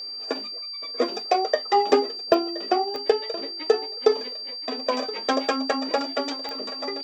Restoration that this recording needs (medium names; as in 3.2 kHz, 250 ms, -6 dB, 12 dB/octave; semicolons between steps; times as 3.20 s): de-click; band-stop 4.7 kHz, Q 30; inverse comb 1022 ms -17 dB